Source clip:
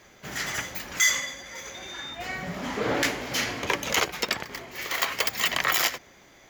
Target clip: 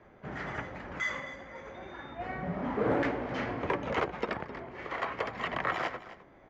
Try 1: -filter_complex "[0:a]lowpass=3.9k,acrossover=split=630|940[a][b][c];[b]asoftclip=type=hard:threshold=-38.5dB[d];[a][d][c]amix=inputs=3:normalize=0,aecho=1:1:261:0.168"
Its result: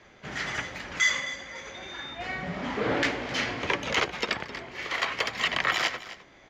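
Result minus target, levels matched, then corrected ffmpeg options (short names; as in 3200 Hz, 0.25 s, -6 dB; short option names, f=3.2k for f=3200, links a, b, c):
4000 Hz band +10.5 dB
-filter_complex "[0:a]lowpass=1.2k,acrossover=split=630|940[a][b][c];[b]asoftclip=type=hard:threshold=-38.5dB[d];[a][d][c]amix=inputs=3:normalize=0,aecho=1:1:261:0.168"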